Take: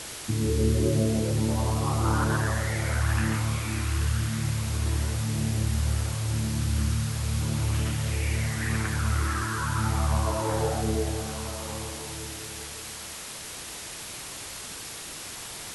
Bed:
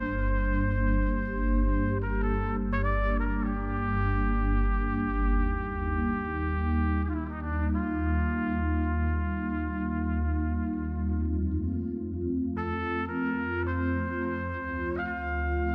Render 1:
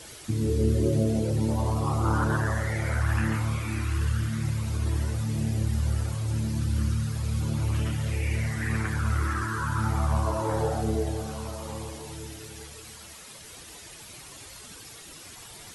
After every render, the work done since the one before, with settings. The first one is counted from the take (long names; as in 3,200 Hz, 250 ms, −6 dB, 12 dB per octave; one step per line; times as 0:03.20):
broadband denoise 10 dB, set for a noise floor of −39 dBFS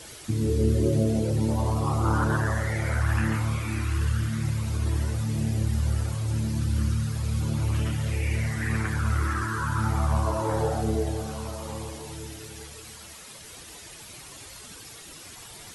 level +1 dB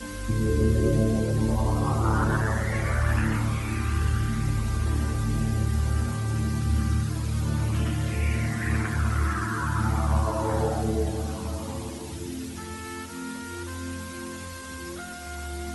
mix in bed −6.5 dB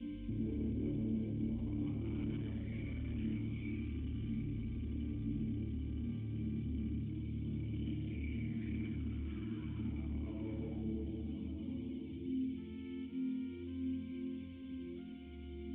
soft clipping −25 dBFS, distortion −10 dB
formant resonators in series i